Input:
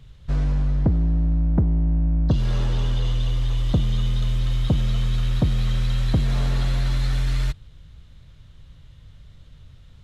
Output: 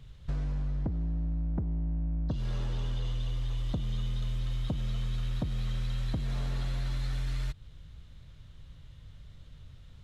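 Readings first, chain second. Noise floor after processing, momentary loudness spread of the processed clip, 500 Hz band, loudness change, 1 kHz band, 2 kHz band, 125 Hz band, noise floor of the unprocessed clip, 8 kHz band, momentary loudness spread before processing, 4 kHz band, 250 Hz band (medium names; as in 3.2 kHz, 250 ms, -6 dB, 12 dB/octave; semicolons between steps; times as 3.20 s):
-52 dBFS, 20 LU, -11.5 dB, -11.0 dB, -10.5 dB, -10.5 dB, -11.0 dB, -48 dBFS, no reading, 4 LU, -10.5 dB, -11.5 dB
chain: compression 5:1, threshold -26 dBFS, peak gain reduction 11 dB; trim -3.5 dB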